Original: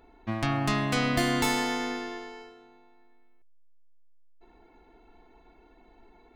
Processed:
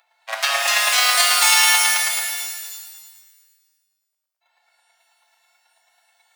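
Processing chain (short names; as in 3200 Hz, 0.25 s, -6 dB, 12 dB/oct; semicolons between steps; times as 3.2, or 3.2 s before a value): chopper 9.2 Hz, depth 60%, duty 15%; tilt shelf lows -8.5 dB, about 1300 Hz; in parallel at -5.5 dB: fuzz box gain 39 dB, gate -40 dBFS; on the sum: Chebyshev high-pass 560 Hz, order 6; shimmer reverb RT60 1.4 s, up +12 st, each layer -2 dB, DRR 1.5 dB; gain +2 dB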